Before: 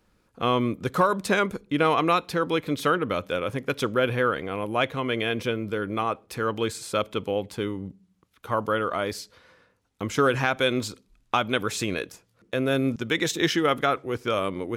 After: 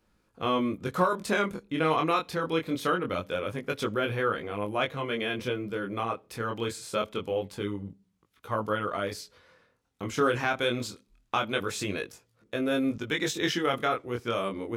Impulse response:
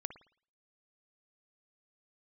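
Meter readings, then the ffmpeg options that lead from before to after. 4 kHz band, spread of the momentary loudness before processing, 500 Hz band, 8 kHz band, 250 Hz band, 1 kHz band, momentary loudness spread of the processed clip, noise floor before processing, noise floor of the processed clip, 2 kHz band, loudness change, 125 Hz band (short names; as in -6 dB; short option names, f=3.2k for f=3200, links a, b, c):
-4.0 dB, 8 LU, -4.0 dB, -4.0 dB, -3.5 dB, -4.0 dB, 8 LU, -67 dBFS, -72 dBFS, -4.0 dB, -4.0 dB, -4.5 dB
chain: -af "flanger=delay=18.5:depth=7.3:speed=0.24,volume=-1dB"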